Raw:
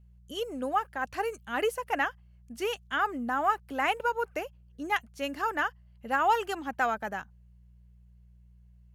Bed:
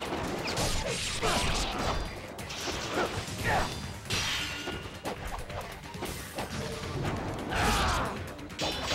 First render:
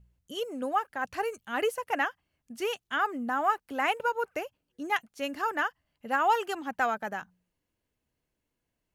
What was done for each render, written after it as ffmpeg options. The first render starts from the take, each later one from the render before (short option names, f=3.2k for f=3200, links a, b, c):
-af "bandreject=f=60:t=h:w=4,bandreject=f=120:t=h:w=4,bandreject=f=180:t=h:w=4"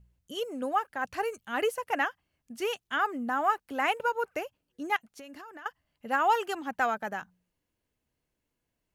-filter_complex "[0:a]asettb=1/sr,asplit=3[a][b][c];[a]atrim=end=4.964[d];[b]atrim=start=4.96:end=5.66,asetpts=PTS-STARTPTS,afade=t=in:d=0.004:c=qsin,afade=t=out:st=0.696:d=0.004:c=qsin,acompressor=threshold=-42dB:ratio=16:attack=3.2:release=140:knee=1:detection=peak[e];[c]atrim=start=5.656[f];[d][e]acrossfade=d=0.004:c1=hsin:c2=qsin[g];[g][f]acrossfade=d=0.004:c1=qsin:c2=hsin"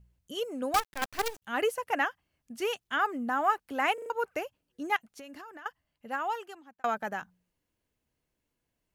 -filter_complex "[0:a]asettb=1/sr,asplit=3[a][b][c];[a]atrim=end=0.744[d];[b]atrim=start=0.74:end=1.42,asetpts=PTS-STARTPTS,afade=t=in:d=0.004:c=qsin,afade=t=out:st=0.676:d=0.004:c=qsin,acrusher=bits=5:dc=4:mix=0:aa=0.000001[e];[c]atrim=start=1.416[f];[d][e]acrossfade=d=0.004:c1=hsin:c2=qsin[g];[g][f]acrossfade=d=0.004:c1=qsin:c2=hsin,asplit=6[h][i][j][k][l][m];[h]atrim=end=3.982[n];[i]atrim=start=3.938:end=3.982[o];[j]atrim=start=3.938:end=3.982[p];[k]atrim=start=3.938:end=3.982[q];[l]atrim=start=4.098:end=6.84,asetpts=PTS-STARTPTS,afade=t=out:st=1.342:d=1.4[r];[m]atrim=start=6.84,asetpts=PTS-STARTPTS,afade=t=in:d=0.004:c=hsin[s];[n][o]acrossfade=d=0.004:c1=hsin:c2=hsin[t];[t][p]acrossfade=d=0.004:c1=hsin:c2=hsin[u];[u][q]acrossfade=d=0.004:c1=hsin:c2=hsin[v];[r][s]concat=n=2:v=0:a=1[w];[v][w]acrossfade=d=0.004:c1=hsin:c2=hsin"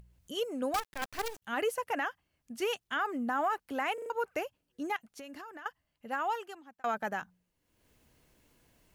-af "alimiter=limit=-23dB:level=0:latency=1:release=40,acompressor=mode=upward:threshold=-52dB:ratio=2.5"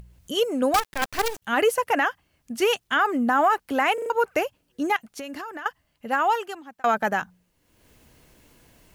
-af "volume=11dB"